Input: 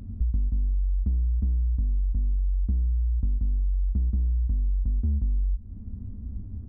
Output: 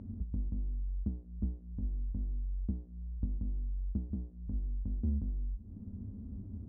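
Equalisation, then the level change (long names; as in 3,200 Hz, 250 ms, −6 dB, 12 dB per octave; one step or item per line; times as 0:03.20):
resonant band-pass 330 Hz, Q 0.51
mains-hum notches 60/120/180/240 Hz
0.0 dB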